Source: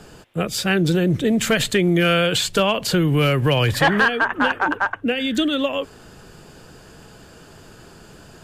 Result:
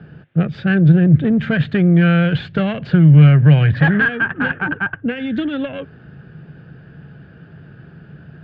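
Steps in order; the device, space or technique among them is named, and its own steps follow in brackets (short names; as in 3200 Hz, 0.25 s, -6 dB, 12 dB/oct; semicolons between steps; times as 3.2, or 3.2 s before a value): guitar amplifier (tube stage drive 13 dB, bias 0.65; tone controls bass +12 dB, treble -15 dB; speaker cabinet 91–3900 Hz, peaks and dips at 150 Hz +9 dB, 1000 Hz -8 dB, 1600 Hz +9 dB); gain -1 dB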